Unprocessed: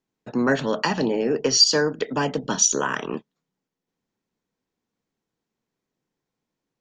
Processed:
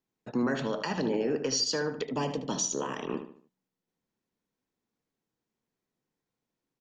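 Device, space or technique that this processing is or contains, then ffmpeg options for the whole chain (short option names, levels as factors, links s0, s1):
stacked limiters: -filter_complex "[0:a]alimiter=limit=0.282:level=0:latency=1:release=336,alimiter=limit=0.158:level=0:latency=1:release=77,asplit=2[s0][s1];[s1]adelay=75,lowpass=f=3400:p=1,volume=0.355,asplit=2[s2][s3];[s3]adelay=75,lowpass=f=3400:p=1,volume=0.38,asplit=2[s4][s5];[s5]adelay=75,lowpass=f=3400:p=1,volume=0.38,asplit=2[s6][s7];[s7]adelay=75,lowpass=f=3400:p=1,volume=0.38[s8];[s0][s2][s4][s6][s8]amix=inputs=5:normalize=0,asettb=1/sr,asplit=3[s9][s10][s11];[s9]atrim=end=2.024[s12];[s10]atrim=start=2.02:end=3.08,asetpts=PTS-STARTPTS,afade=t=in:d=0.004:c=qsin,afade=t=out:st=1.056:d=0.004:c=qsin,equalizer=f=1500:t=o:w=0.43:g=-12.5[s13];[s11]atrim=start=3.076[s14];[s12][s13]acrossfade=d=0.004:c1=hsin:c2=qsin[s15];[s15][s14]acrossfade=d=0.004:c1=qsin:c2=hsin,volume=0.596"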